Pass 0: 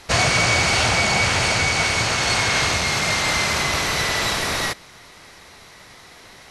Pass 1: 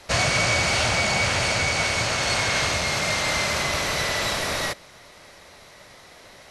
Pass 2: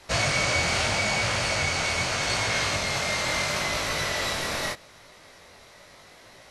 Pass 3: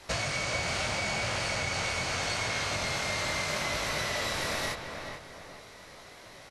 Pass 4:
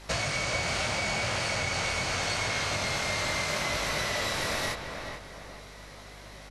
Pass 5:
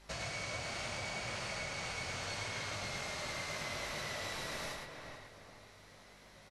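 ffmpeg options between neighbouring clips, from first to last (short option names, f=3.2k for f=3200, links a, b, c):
-filter_complex "[0:a]equalizer=f=580:t=o:w=0.38:g=8,acrossover=split=390|790[a][b][c];[b]alimiter=level_in=2.5dB:limit=-24dB:level=0:latency=1,volume=-2.5dB[d];[a][d][c]amix=inputs=3:normalize=0,volume=-3.5dB"
-af "flanger=delay=18:depth=5.3:speed=0.79"
-filter_complex "[0:a]acompressor=threshold=-29dB:ratio=6,asplit=2[a][b];[b]adelay=432,lowpass=f=2.2k:p=1,volume=-5.5dB,asplit=2[c][d];[d]adelay=432,lowpass=f=2.2k:p=1,volume=0.37,asplit=2[e][f];[f]adelay=432,lowpass=f=2.2k:p=1,volume=0.37,asplit=2[g][h];[h]adelay=432,lowpass=f=2.2k:p=1,volume=0.37[i];[a][c][e][g][i]amix=inputs=5:normalize=0"
-af "aeval=exprs='val(0)+0.00282*(sin(2*PI*50*n/s)+sin(2*PI*2*50*n/s)/2+sin(2*PI*3*50*n/s)/3+sin(2*PI*4*50*n/s)/4+sin(2*PI*5*50*n/s)/5)':c=same,volume=1.5dB"
-af "flanger=delay=4.9:depth=3.8:regen=-66:speed=0.65:shape=sinusoidal,aecho=1:1:109:0.631,volume=-8dB"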